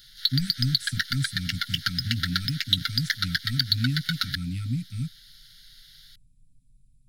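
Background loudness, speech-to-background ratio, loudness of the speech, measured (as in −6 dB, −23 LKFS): −27.0 LKFS, −4.5 dB, −31.5 LKFS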